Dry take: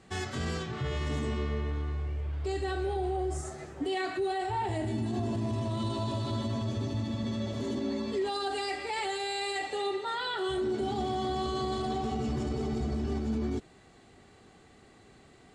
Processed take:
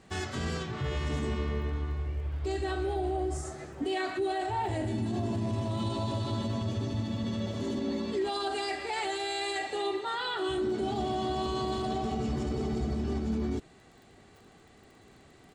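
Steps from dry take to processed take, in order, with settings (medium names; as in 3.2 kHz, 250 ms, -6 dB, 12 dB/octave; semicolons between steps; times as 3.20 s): crackle 28 per s -49 dBFS; harmony voices -3 st -11 dB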